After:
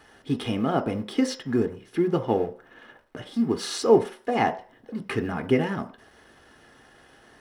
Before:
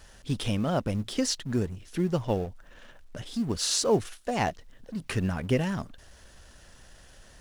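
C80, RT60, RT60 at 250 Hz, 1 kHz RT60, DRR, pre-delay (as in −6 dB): 18.5 dB, 0.45 s, 0.40 s, 0.45 s, 7.0 dB, 3 ms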